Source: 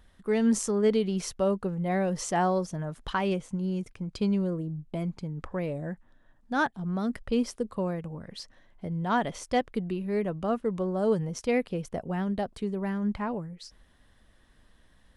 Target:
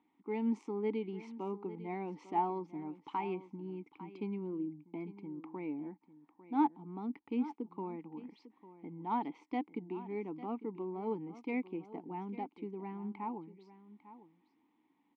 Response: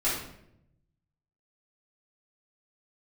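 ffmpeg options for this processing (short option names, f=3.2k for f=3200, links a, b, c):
-filter_complex "[0:a]highpass=180,equalizer=f=450:t=o:w=0.32:g=3,acrossover=split=1600[a][b];[a]crystalizer=i=6:c=0[c];[c][b]amix=inputs=2:normalize=0,adynamicsmooth=sensitivity=2:basefreq=4.2k,asplit=3[d][e][f];[d]bandpass=f=300:t=q:w=8,volume=0dB[g];[e]bandpass=f=870:t=q:w=8,volume=-6dB[h];[f]bandpass=f=2.24k:t=q:w=8,volume=-9dB[i];[g][h][i]amix=inputs=3:normalize=0,asplit=2[j][k];[k]aecho=0:1:850:0.168[l];[j][l]amix=inputs=2:normalize=0,volume=4dB"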